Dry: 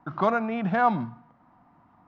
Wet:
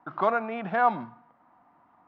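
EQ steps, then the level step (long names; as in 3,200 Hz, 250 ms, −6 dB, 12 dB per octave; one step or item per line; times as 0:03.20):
high-frequency loss of the air 52 metres
bass and treble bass −13 dB, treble −6 dB
0.0 dB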